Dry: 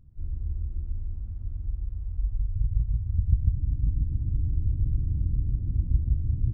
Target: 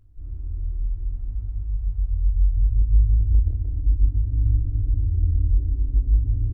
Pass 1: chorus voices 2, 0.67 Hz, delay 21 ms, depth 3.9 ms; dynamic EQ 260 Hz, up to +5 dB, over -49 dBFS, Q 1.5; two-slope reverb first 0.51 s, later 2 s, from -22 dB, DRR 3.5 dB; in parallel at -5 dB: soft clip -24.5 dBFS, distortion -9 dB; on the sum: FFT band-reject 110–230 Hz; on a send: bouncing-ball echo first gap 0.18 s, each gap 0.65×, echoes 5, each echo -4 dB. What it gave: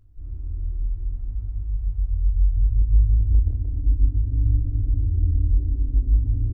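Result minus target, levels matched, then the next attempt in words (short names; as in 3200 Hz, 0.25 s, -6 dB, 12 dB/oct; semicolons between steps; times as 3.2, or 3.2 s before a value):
250 Hz band +3.5 dB
chorus voices 2, 0.67 Hz, delay 21 ms, depth 3.9 ms; two-slope reverb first 0.51 s, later 2 s, from -22 dB, DRR 3.5 dB; in parallel at -5 dB: soft clip -24.5 dBFS, distortion -9 dB; on the sum: FFT band-reject 110–230 Hz; on a send: bouncing-ball echo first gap 0.18 s, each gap 0.65×, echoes 5, each echo -4 dB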